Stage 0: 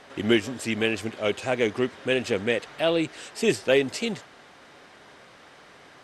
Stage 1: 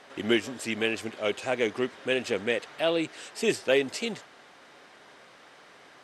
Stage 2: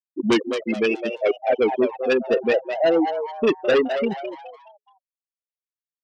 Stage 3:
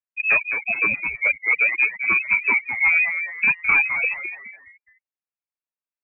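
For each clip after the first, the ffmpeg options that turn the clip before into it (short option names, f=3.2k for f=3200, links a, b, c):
-af "lowshelf=f=130:g=-12,volume=-2dB"
-filter_complex "[0:a]afftfilt=real='re*gte(hypot(re,im),0.141)':imag='im*gte(hypot(re,im),0.141)':win_size=1024:overlap=0.75,aeval=exprs='0.266*(cos(1*acos(clip(val(0)/0.266,-1,1)))-cos(1*PI/2))+0.133*(cos(5*acos(clip(val(0)/0.266,-1,1)))-cos(5*PI/2))':c=same,asplit=5[a][b][c][d][e];[b]adelay=211,afreqshift=140,volume=-8dB[f];[c]adelay=422,afreqshift=280,volume=-16.9dB[g];[d]adelay=633,afreqshift=420,volume=-25.7dB[h];[e]adelay=844,afreqshift=560,volume=-34.6dB[i];[a][f][g][h][i]amix=inputs=5:normalize=0"
-af "lowpass=f=2.4k:t=q:w=0.5098,lowpass=f=2.4k:t=q:w=0.6013,lowpass=f=2.4k:t=q:w=0.9,lowpass=f=2.4k:t=q:w=2.563,afreqshift=-2800"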